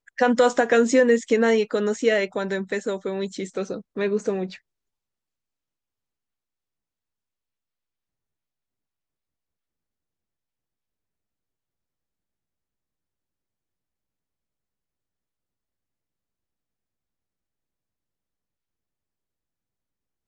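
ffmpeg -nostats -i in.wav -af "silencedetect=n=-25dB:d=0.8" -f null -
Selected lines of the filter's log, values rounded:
silence_start: 4.45
silence_end: 20.27 | silence_duration: 15.82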